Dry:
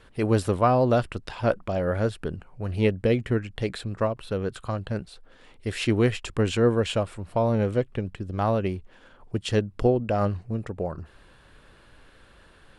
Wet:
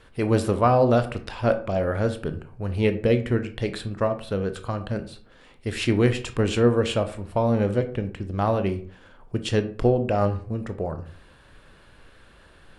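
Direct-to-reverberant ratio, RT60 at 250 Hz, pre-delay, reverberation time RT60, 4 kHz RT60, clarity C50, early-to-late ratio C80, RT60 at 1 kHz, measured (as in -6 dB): 8.5 dB, 0.55 s, 19 ms, 0.45 s, 0.30 s, 13.0 dB, 17.0 dB, 0.45 s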